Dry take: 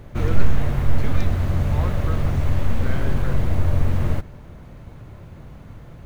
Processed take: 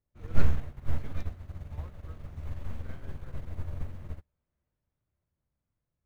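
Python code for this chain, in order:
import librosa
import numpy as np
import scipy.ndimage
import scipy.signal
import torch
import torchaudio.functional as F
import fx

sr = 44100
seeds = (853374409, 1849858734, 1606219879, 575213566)

y = fx.peak_eq(x, sr, hz=71.0, db=8.0, octaves=0.22)
y = fx.echo_thinned(y, sr, ms=553, feedback_pct=74, hz=400.0, wet_db=-16)
y = fx.upward_expand(y, sr, threshold_db=-32.0, expansion=2.5)
y = y * librosa.db_to_amplitude(-4.0)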